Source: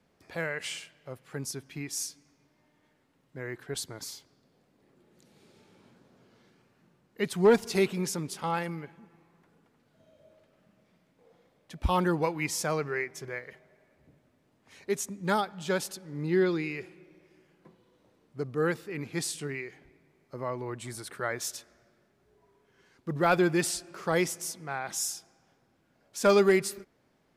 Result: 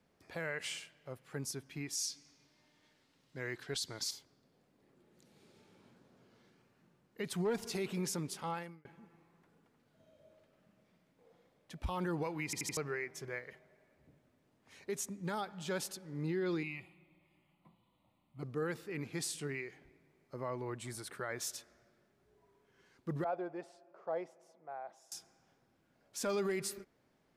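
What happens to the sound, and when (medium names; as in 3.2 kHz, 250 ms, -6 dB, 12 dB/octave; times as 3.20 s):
1.95–4.11 s: peaking EQ 4.6 kHz +12 dB 1.8 oct
8.35–8.85 s: fade out
12.45 s: stutter in place 0.08 s, 4 plays
16.63–18.43 s: static phaser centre 1.6 kHz, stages 6
23.24–25.12 s: band-pass filter 650 Hz, Q 3.2
whole clip: peak limiter -23.5 dBFS; trim -4.5 dB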